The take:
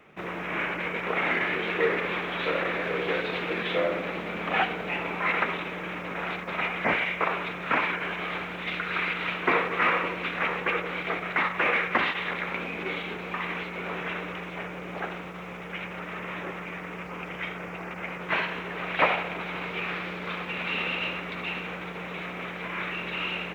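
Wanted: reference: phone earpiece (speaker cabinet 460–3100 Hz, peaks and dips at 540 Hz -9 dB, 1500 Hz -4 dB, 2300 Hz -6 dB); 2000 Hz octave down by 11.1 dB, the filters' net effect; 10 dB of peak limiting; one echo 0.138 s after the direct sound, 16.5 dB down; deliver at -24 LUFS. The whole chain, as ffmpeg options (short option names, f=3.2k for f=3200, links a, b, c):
-af "equalizer=f=2k:t=o:g=-8.5,alimiter=limit=-21.5dB:level=0:latency=1,highpass=460,equalizer=f=540:t=q:w=4:g=-9,equalizer=f=1.5k:t=q:w=4:g=-4,equalizer=f=2.3k:t=q:w=4:g=-6,lowpass=f=3.1k:w=0.5412,lowpass=f=3.1k:w=1.3066,aecho=1:1:138:0.15,volume=14.5dB"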